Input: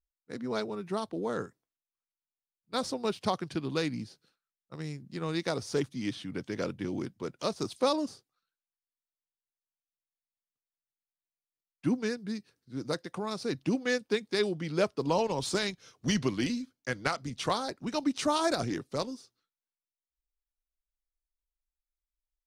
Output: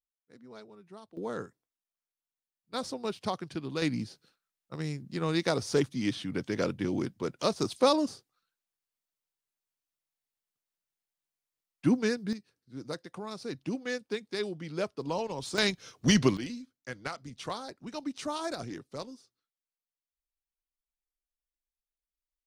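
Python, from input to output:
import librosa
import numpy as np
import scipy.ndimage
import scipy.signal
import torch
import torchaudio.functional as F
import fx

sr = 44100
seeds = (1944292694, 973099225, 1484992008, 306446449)

y = fx.gain(x, sr, db=fx.steps((0.0, -16.0), (1.17, -3.0), (3.82, 3.5), (12.33, -5.0), (15.58, 5.5), (16.37, -7.0)))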